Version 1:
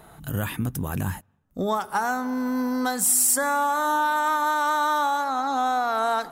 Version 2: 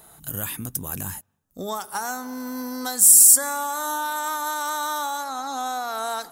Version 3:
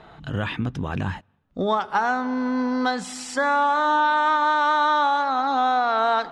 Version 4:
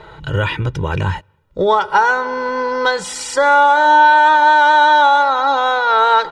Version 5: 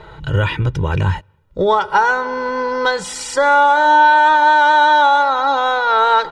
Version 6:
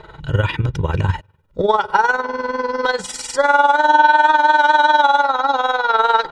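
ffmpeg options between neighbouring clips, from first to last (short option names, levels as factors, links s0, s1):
-af "bass=f=250:g=-3,treble=f=4000:g=14,volume=0.562"
-af "lowpass=f=3400:w=0.5412,lowpass=f=3400:w=1.3066,volume=2.51"
-af "aecho=1:1:2.1:0.9,volume=2.11"
-af "lowshelf=f=150:g=5.5,volume=0.891"
-af "tremolo=f=20:d=0.71,volume=1.19"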